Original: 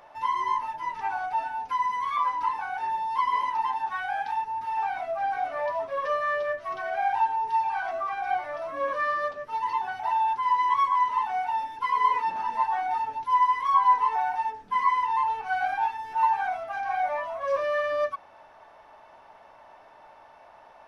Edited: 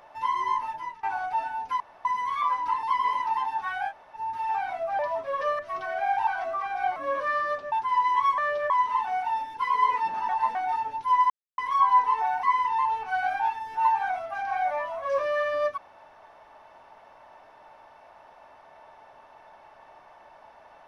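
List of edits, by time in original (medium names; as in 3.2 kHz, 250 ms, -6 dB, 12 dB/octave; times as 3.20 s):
0.76–1.03 s: fade out, to -21 dB
1.80 s: insert room tone 0.25 s
2.58–3.11 s: delete
4.18–4.44 s: room tone, crossfade 0.06 s
5.27–5.63 s: delete
6.23–6.55 s: move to 10.92 s
7.23–7.74 s: delete
8.43–8.69 s: delete
9.45–10.26 s: delete
12.51–12.77 s: reverse
13.52 s: insert silence 0.28 s
14.37–14.81 s: delete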